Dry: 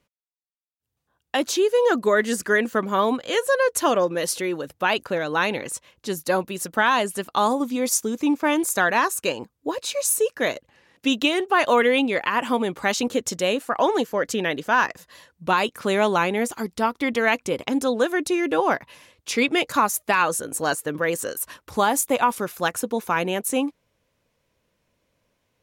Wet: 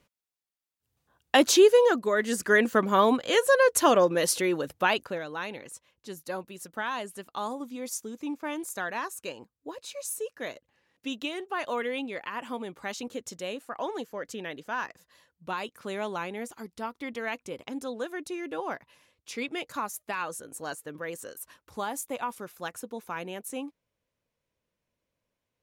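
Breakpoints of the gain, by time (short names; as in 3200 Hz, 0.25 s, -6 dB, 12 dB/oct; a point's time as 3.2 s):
1.68 s +3 dB
2.04 s -8 dB
2.62 s -0.5 dB
4.77 s -0.5 dB
5.36 s -13 dB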